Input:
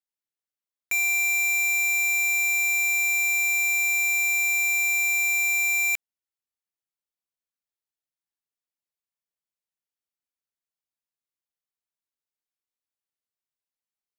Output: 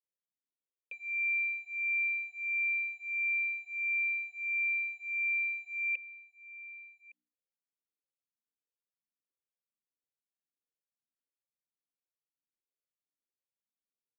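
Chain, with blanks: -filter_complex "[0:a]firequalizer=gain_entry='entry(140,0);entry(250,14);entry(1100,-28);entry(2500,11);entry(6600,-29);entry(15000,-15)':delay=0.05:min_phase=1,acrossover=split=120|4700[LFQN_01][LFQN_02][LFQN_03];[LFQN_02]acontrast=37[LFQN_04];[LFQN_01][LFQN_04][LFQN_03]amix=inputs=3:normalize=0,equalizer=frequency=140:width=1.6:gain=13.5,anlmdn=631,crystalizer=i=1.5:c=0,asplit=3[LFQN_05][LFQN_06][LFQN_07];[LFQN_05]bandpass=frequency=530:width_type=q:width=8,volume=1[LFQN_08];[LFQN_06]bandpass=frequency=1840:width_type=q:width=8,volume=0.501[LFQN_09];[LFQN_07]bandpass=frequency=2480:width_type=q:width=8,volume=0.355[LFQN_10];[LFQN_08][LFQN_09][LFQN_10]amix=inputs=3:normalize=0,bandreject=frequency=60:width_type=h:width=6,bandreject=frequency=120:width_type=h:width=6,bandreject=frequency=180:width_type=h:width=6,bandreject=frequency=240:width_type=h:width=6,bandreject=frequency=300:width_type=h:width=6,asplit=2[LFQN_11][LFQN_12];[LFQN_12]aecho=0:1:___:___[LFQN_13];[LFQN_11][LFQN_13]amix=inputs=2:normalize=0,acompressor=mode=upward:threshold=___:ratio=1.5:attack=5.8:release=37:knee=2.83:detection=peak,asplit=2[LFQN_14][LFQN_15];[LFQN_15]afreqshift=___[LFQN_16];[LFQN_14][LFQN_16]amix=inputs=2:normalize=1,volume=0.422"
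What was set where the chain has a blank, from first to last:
1162, 0.119, 0.0224, 1.5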